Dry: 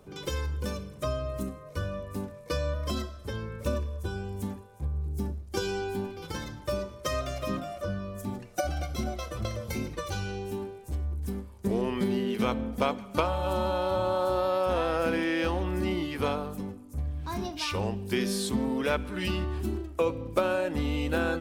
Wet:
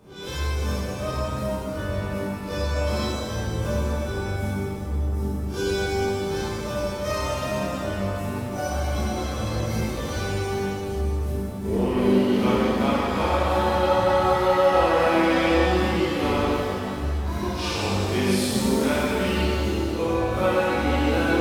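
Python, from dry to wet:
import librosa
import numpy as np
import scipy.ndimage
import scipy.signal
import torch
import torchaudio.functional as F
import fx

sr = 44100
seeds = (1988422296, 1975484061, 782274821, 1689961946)

y = fx.spec_blur(x, sr, span_ms=92.0)
y = fx.rev_shimmer(y, sr, seeds[0], rt60_s=2.5, semitones=7, shimmer_db=-8, drr_db=-7.5)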